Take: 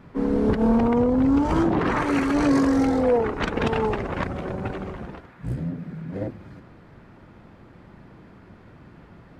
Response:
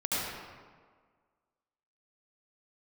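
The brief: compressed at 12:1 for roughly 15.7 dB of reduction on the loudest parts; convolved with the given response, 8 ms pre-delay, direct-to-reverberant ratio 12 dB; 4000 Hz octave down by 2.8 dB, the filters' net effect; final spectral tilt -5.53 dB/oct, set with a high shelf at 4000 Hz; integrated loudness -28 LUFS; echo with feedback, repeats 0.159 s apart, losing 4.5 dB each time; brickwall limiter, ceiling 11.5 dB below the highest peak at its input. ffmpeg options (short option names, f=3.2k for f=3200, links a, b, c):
-filter_complex "[0:a]highshelf=f=4k:g=6.5,equalizer=f=4k:t=o:g=-8,acompressor=threshold=-32dB:ratio=12,alimiter=level_in=10dB:limit=-24dB:level=0:latency=1,volume=-10dB,aecho=1:1:159|318|477|636|795|954|1113|1272|1431:0.596|0.357|0.214|0.129|0.0772|0.0463|0.0278|0.0167|0.01,asplit=2[a][b];[1:a]atrim=start_sample=2205,adelay=8[c];[b][c]afir=irnorm=-1:irlink=0,volume=-21dB[d];[a][d]amix=inputs=2:normalize=0,volume=12.5dB"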